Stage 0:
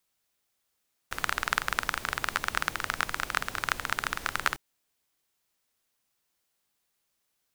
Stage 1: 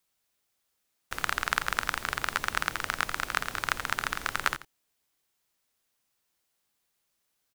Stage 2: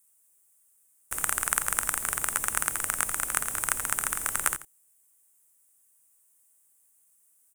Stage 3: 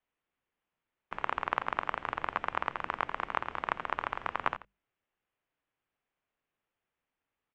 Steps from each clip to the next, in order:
delay 86 ms -14.5 dB
resonant high shelf 6.3 kHz +13.5 dB, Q 3; trim -2 dB
mistuned SSB -320 Hz 290–3600 Hz; hum notches 50/100/150/200 Hz

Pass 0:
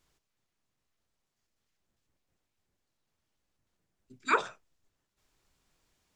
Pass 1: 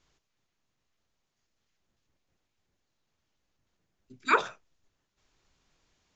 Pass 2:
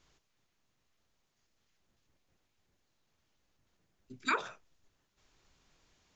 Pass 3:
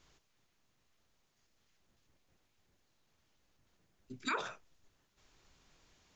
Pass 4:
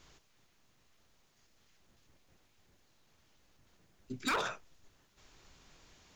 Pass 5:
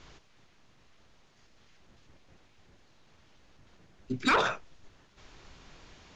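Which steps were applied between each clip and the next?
elliptic low-pass 6.9 kHz; trim +3.5 dB
compression 5:1, threshold -31 dBFS, peak gain reduction 12.5 dB; trim +2 dB
peak limiter -26.5 dBFS, peak gain reduction 9 dB; trim +2 dB
hard clipper -35 dBFS, distortion -9 dB; trim +6.5 dB
distance through air 97 m; trim +9 dB

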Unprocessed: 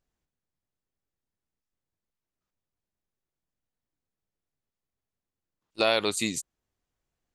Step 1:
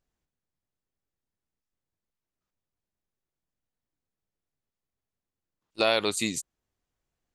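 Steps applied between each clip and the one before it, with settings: no audible change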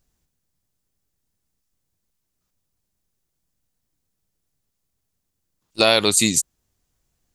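tone controls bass +6 dB, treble +9 dB; trim +6.5 dB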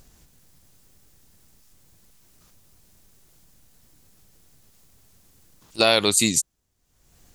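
upward compressor, threshold -35 dBFS; wow and flutter 26 cents; trim -2 dB

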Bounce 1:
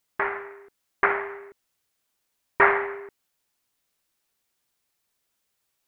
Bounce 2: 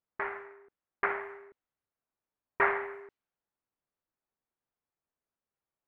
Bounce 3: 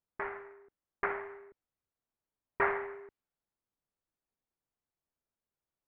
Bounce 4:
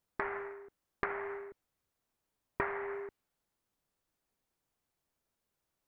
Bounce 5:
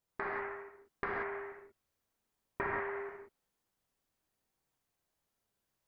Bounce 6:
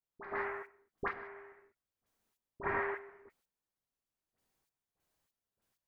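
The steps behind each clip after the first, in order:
level-controlled noise filter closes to 1.3 kHz, open at -23.5 dBFS; trim -8.5 dB
tilt EQ -1.5 dB/octave; trim -3 dB
compression 12:1, threshold -39 dBFS, peak gain reduction 16 dB; trim +7.5 dB
gated-style reverb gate 210 ms flat, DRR -3.5 dB; trim -4.5 dB
trance gate "..xx..x......xx" 97 bpm -12 dB; phase dispersion highs, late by 53 ms, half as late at 1.5 kHz; trim +2 dB

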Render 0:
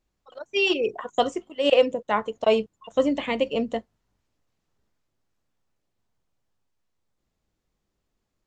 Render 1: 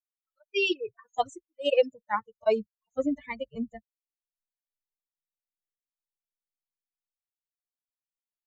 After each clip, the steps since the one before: expander on every frequency bin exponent 3; trim -1 dB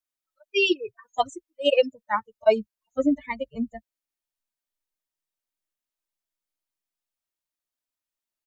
comb 3.2 ms, depth 39%; trim +4 dB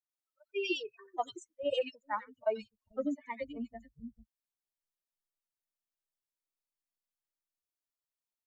compression 2:1, threshold -23 dBFS, peak gain reduction 6.5 dB; three bands offset in time mids, highs, lows 90/440 ms, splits 200/2300 Hz; trim -7.5 dB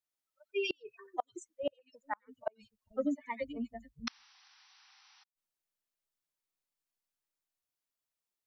painted sound noise, 4.07–5.24 s, 730–6000 Hz -28 dBFS; inverted gate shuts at -23 dBFS, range -37 dB; trim +1.5 dB

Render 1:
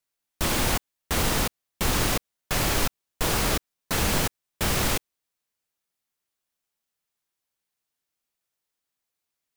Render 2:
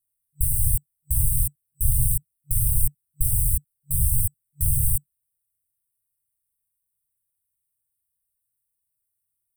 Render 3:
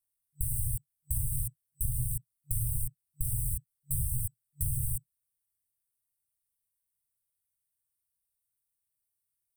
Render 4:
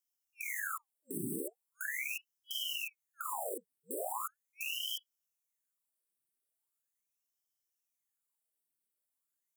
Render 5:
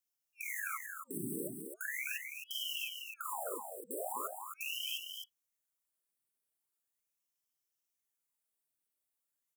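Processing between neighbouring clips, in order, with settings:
FFT band-reject 140–8000 Hz; trim +7 dB
dynamic bell 120 Hz, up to +7 dB, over -41 dBFS, Q 3.1; compression 6:1, threshold -22 dBFS, peak gain reduction 9.5 dB; peaking EQ 5.6 kHz +5 dB 0.99 oct; trim -5.5 dB
compression, threshold -31 dBFS, peak gain reduction 6 dB; peak limiter -26 dBFS, peak gain reduction 7.5 dB; ring modulator with a swept carrier 1.7 kHz, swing 85%, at 0.4 Hz
delay 262 ms -6 dB; trim -1.5 dB

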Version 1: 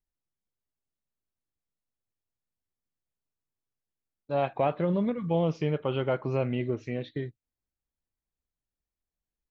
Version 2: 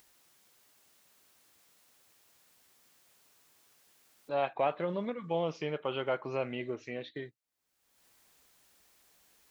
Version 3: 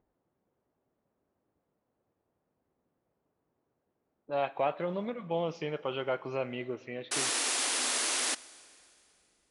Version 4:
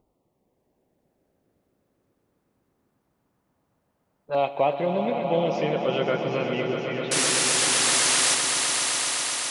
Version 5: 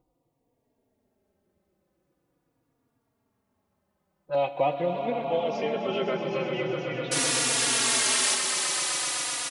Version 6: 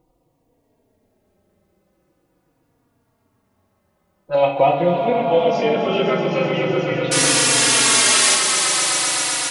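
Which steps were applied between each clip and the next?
high-pass 670 Hz 6 dB/octave; upward compressor, threshold -42 dBFS
level-controlled noise filter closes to 510 Hz, open at -31.5 dBFS; painted sound noise, 7.11–8.35 s, 230–11000 Hz -31 dBFS; Schroeder reverb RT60 2.6 s, combs from 28 ms, DRR 19 dB
LFO notch saw down 0.23 Hz 290–1700 Hz; echo with a slow build-up 127 ms, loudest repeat 5, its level -10 dB; trim +8 dB
endless flanger 3.6 ms -0.43 Hz
simulated room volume 83 m³, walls mixed, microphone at 0.6 m; trim +7.5 dB

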